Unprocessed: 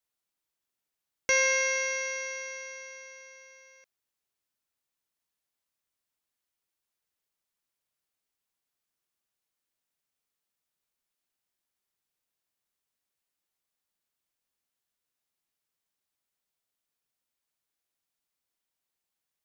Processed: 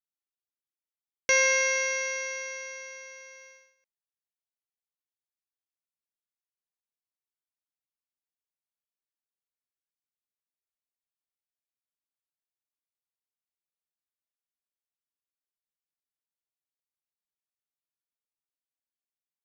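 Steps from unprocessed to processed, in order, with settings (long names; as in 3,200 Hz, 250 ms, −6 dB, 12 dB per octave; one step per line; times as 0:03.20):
noise gate −53 dBFS, range −19 dB
level +2 dB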